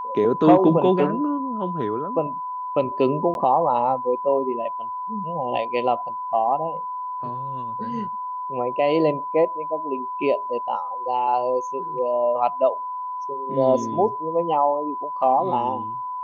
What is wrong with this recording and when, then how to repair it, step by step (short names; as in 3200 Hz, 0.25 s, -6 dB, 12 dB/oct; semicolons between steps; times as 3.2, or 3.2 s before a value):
tone 1000 Hz -27 dBFS
3.34–3.35 gap 11 ms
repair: notch 1000 Hz, Q 30; interpolate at 3.34, 11 ms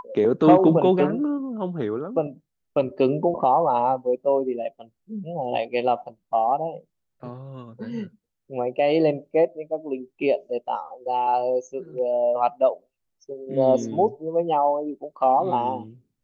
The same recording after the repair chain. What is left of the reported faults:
none